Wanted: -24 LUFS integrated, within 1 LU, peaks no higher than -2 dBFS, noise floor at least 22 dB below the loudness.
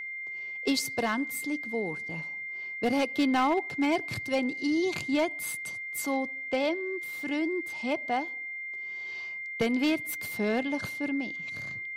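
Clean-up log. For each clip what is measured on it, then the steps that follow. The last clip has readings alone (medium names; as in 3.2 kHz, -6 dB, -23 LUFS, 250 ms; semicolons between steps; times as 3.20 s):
clipped samples 0.5%; clipping level -19.5 dBFS; steady tone 2.1 kHz; tone level -35 dBFS; loudness -30.5 LUFS; peak level -19.5 dBFS; loudness target -24.0 LUFS
-> clip repair -19.5 dBFS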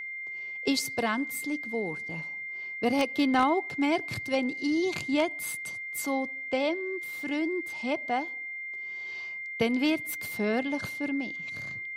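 clipped samples 0.0%; steady tone 2.1 kHz; tone level -35 dBFS
-> band-stop 2.1 kHz, Q 30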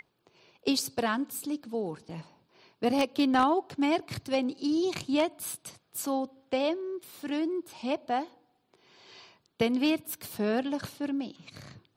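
steady tone not found; loudness -30.5 LUFS; peak level -10.0 dBFS; loudness target -24.0 LUFS
-> trim +6.5 dB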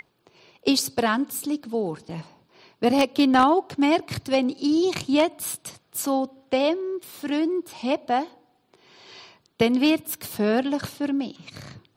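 loudness -24.0 LUFS; peak level -3.5 dBFS; noise floor -67 dBFS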